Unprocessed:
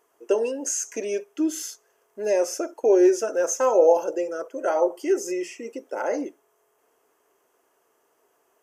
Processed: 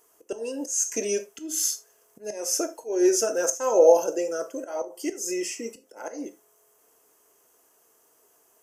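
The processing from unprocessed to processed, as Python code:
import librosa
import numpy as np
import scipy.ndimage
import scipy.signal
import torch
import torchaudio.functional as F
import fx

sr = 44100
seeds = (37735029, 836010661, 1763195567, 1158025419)

y = fx.bass_treble(x, sr, bass_db=6, treble_db=12)
y = fx.auto_swell(y, sr, attack_ms=284.0)
y = fx.rev_gated(y, sr, seeds[0], gate_ms=110, shape='falling', drr_db=9.0)
y = y * librosa.db_to_amplitude(-1.0)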